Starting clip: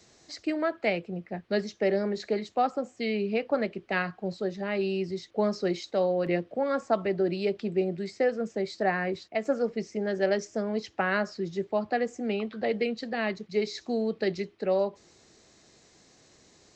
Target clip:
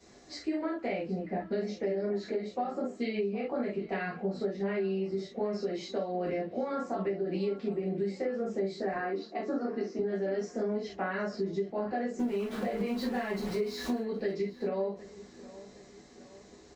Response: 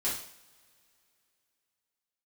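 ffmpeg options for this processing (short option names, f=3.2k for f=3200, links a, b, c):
-filter_complex "[0:a]asettb=1/sr,asplit=3[a][b][c];[a]atrim=end=12.194[d];[b]atrim=start=12.19:end=13.98,asetpts=PTS-STARTPTS,afade=t=in:d=0.004:c=qsin,afade=t=out:st=1.786:d=0.004:c=qsin,aeval=exprs='val(0)+0.5*0.02*sgn(val(0))':c=same[e];[c]atrim=start=13.976[f];[d][e]acrossfade=d=0.004:c1=hsin:c2=qsin[g];[g][f]acrossfade=d=0.004:c1=qsin:c2=hsin,alimiter=limit=-23dB:level=0:latency=1:release=64,asettb=1/sr,asplit=3[h][i][j];[h]atrim=end=8.934[k];[i]atrim=start=8.93:end=9.99,asetpts=PTS-STARTPTS,afade=t=in:d=0.004:c=qsin,afade=t=out:st=1.056:d=0.004:c=qsin,highpass=f=250:w=0.5412,highpass=f=250:w=1.3066,equalizer=f=290:t=q:w=4:g=8,equalizer=f=490:t=q:w=4:g=-5,equalizer=f=1.2k:t=q:w=4:g=5,equalizer=f=2.2k:t=q:w=4:g=-7,equalizer=f=3.3k:t=q:w=4:g=-5,lowpass=f=5.6k:w=0.5412,lowpass=f=5.6k:w=1.3066[l];[j]atrim=start=9.986[m];[k][l]acrossfade=d=0.004:c1=hsin:c2=qsin[n];[n][m]acrossfade=d=0.004:c1=qsin:c2=hsin[o];[1:a]atrim=start_sample=2205,atrim=end_sample=3528[p];[o][p]afir=irnorm=-1:irlink=0,acompressor=threshold=-28dB:ratio=10,highshelf=f=2k:g=-8.5,asplit=2[q][r];[r]adelay=768,lowpass=f=4.1k:p=1,volume=-17.5dB,asplit=2[s][t];[t]adelay=768,lowpass=f=4.1k:p=1,volume=0.51,asplit=2[u][v];[v]adelay=768,lowpass=f=4.1k:p=1,volume=0.51,asplit=2[w][x];[x]adelay=768,lowpass=f=4.1k:p=1,volume=0.51[y];[q][s][u][w][y]amix=inputs=5:normalize=0"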